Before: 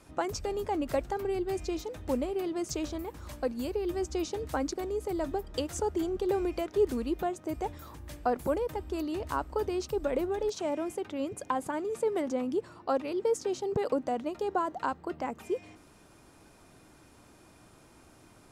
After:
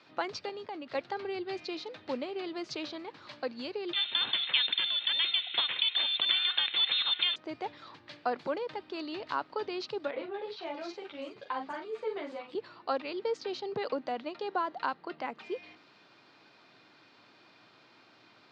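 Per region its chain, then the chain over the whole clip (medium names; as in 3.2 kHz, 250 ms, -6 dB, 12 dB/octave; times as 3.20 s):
0.49–0.95 s: gate -40 dBFS, range -11 dB + compression, threshold -33 dBFS
3.93–7.36 s: brick-wall FIR high-pass 200 Hz + frequency inversion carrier 3.9 kHz + spectrum-flattening compressor 2:1
10.11–12.55 s: doubling 41 ms -6.5 dB + three bands offset in time mids, lows, highs 30/320 ms, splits 240/4400 Hz + three-phase chorus
whole clip: Chebyshev band-pass 110–4400 Hz, order 4; tilt EQ +3.5 dB/octave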